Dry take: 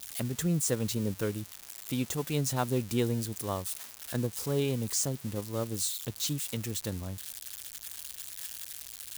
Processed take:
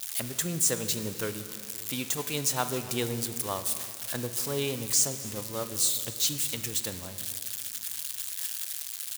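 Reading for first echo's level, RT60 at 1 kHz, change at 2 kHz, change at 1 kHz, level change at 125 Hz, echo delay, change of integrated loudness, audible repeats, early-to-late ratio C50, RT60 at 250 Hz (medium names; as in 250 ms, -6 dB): -20.5 dB, 2.1 s, +5.0 dB, +2.5 dB, -5.5 dB, 268 ms, +3.5 dB, 1, 10.5 dB, 3.0 s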